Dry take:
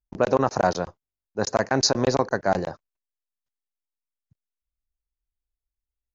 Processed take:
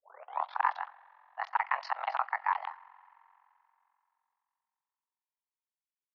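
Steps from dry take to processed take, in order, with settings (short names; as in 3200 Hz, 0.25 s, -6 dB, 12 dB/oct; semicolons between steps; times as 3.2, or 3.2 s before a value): tape start at the beginning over 0.66 s; on a send at -20 dB: reverb RT60 3.0 s, pre-delay 43 ms; on the sum: ring modulator 22 Hz; mistuned SSB +270 Hz 560–3100 Hz; gain -3 dB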